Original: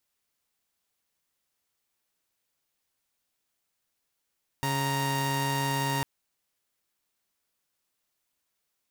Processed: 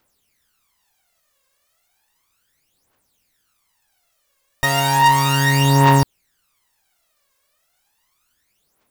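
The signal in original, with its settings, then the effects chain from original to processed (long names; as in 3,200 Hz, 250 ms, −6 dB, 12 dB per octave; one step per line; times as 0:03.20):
held notes C#3/A#5 saw, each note −26.5 dBFS 1.40 s
parametric band 950 Hz +4 dB 2.7 octaves
phase shifter 0.34 Hz, delay 1.9 ms, feedback 73%
in parallel at −6.5 dB: sine wavefolder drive 7 dB, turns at −7 dBFS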